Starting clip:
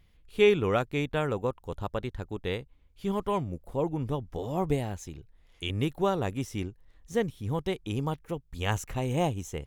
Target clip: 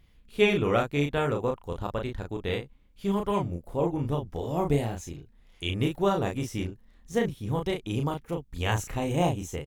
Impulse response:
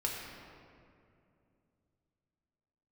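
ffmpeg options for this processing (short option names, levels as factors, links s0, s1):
-filter_complex "[0:a]tremolo=f=220:d=0.261,asplit=2[s0][s1];[s1]adelay=35,volume=0.631[s2];[s0][s2]amix=inputs=2:normalize=0,volume=1.26"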